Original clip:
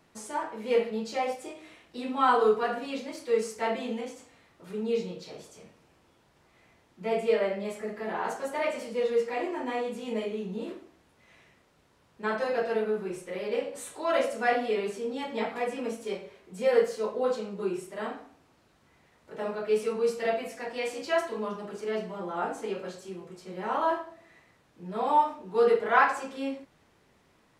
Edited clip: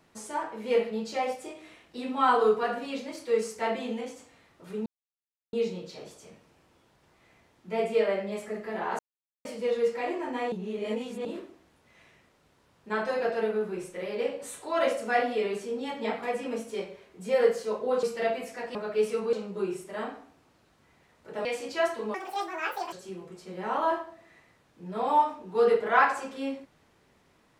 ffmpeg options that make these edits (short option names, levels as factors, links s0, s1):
-filter_complex "[0:a]asplit=12[s0][s1][s2][s3][s4][s5][s6][s7][s8][s9][s10][s11];[s0]atrim=end=4.86,asetpts=PTS-STARTPTS,afade=t=out:st=4.856:d=0.004:c=hsin,apad=pad_dur=0.67[s12];[s1]atrim=start=4.86:end=8.32,asetpts=PTS-STARTPTS,afade=t=in:d=0.004:c=hsin,afade=t=out:st=3.456:d=0.004:c=hsin[s13];[s2]atrim=start=8.32:end=8.78,asetpts=PTS-STARTPTS,volume=0[s14];[s3]atrim=start=8.78:end=9.852,asetpts=PTS-STARTPTS,afade=t=in:d=0.004:c=hsin[s15];[s4]atrim=start=9.848:end=10.582,asetpts=PTS-STARTPTS,areverse[s16];[s5]atrim=start=10.578:end=17.362[s17];[s6]atrim=start=20.058:end=20.782[s18];[s7]atrim=start=19.478:end=20.062[s19];[s8]atrim=start=17.358:end=19.482[s20];[s9]atrim=start=20.778:end=21.474[s21];[s10]atrim=start=21.47:end=22.92,asetpts=PTS-STARTPTS,asetrate=81585,aresample=44100[s22];[s11]atrim=start=22.916[s23];[s12][s13][s14][s15]concat=n=4:v=0:a=1[s24];[s24][s16]acrossfade=d=0.004:c1=hsin:c2=hsin[s25];[s25][s17]acrossfade=d=0.004:c1=hsin:c2=hsin[s26];[s26][s18]acrossfade=d=0.004:c1=hsin:c2=hsin[s27];[s27][s19]acrossfade=d=0.004:c1=hsin:c2=hsin[s28];[s28][s20]acrossfade=d=0.004:c1=hsin:c2=hsin[s29];[s29][s21]acrossfade=d=0.004:c1=hsin:c2=hsin[s30];[s30][s22]acrossfade=d=0.004:c1=hsin:c2=hsin[s31];[s31][s23]acrossfade=d=0.004:c1=hsin:c2=hsin"